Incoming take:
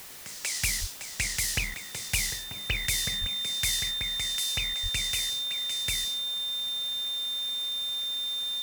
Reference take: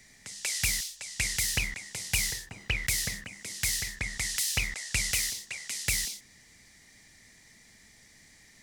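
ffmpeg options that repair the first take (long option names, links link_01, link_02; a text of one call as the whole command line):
ffmpeg -i in.wav -filter_complex "[0:a]bandreject=frequency=3600:width=30,asplit=3[link_01][link_02][link_03];[link_01]afade=type=out:start_time=0.8:duration=0.02[link_04];[link_02]highpass=frequency=140:width=0.5412,highpass=frequency=140:width=1.3066,afade=type=in:start_time=0.8:duration=0.02,afade=type=out:start_time=0.92:duration=0.02[link_05];[link_03]afade=type=in:start_time=0.92:duration=0.02[link_06];[link_04][link_05][link_06]amix=inputs=3:normalize=0,asplit=3[link_07][link_08][link_09];[link_07]afade=type=out:start_time=3.2:duration=0.02[link_10];[link_08]highpass=frequency=140:width=0.5412,highpass=frequency=140:width=1.3066,afade=type=in:start_time=3.2:duration=0.02,afade=type=out:start_time=3.32:duration=0.02[link_11];[link_09]afade=type=in:start_time=3.32:duration=0.02[link_12];[link_10][link_11][link_12]amix=inputs=3:normalize=0,asplit=3[link_13][link_14][link_15];[link_13]afade=type=out:start_time=4.82:duration=0.02[link_16];[link_14]highpass=frequency=140:width=0.5412,highpass=frequency=140:width=1.3066,afade=type=in:start_time=4.82:duration=0.02,afade=type=out:start_time=4.94:duration=0.02[link_17];[link_15]afade=type=in:start_time=4.94:duration=0.02[link_18];[link_16][link_17][link_18]amix=inputs=3:normalize=0,afwtdn=0.0056,asetnsamples=nb_out_samples=441:pad=0,asendcmd='3.91 volume volume 4dB',volume=0dB" out.wav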